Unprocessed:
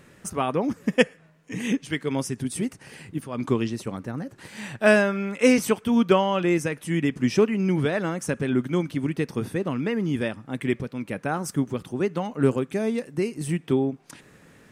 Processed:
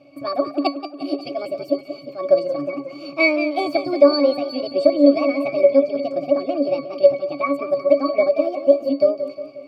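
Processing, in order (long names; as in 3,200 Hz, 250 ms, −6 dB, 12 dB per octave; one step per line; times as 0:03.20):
low-shelf EQ 360 Hz −8.5 dB
resonances in every octave F#, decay 0.28 s
change of speed 1.52×
graphic EQ with 15 bands 160 Hz −9 dB, 630 Hz +7 dB, 1,600 Hz −7 dB, 4,000 Hz +4 dB
boost into a limiter +22 dB
feedback echo with a swinging delay time 179 ms, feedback 52%, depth 79 cents, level −11 dB
level −1 dB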